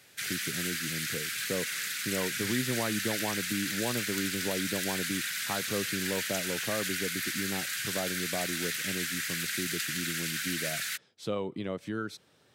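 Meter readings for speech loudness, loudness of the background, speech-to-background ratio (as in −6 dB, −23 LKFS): −37.0 LKFS, −32.0 LKFS, −5.0 dB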